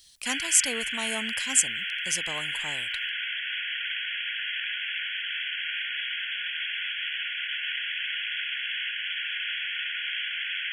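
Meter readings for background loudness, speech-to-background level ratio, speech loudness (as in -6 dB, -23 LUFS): -29.5 LUFS, 3.0 dB, -26.5 LUFS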